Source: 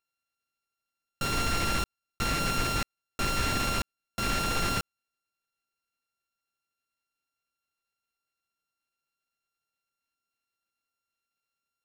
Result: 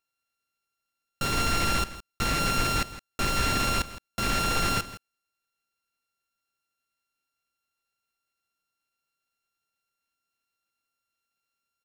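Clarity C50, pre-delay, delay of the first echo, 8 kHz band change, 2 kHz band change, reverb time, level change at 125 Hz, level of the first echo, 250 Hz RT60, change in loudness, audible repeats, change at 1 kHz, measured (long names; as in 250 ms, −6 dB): no reverb audible, no reverb audible, 164 ms, +2.5 dB, +2.5 dB, no reverb audible, +2.0 dB, −15.0 dB, no reverb audible, +2.5 dB, 1, +3.0 dB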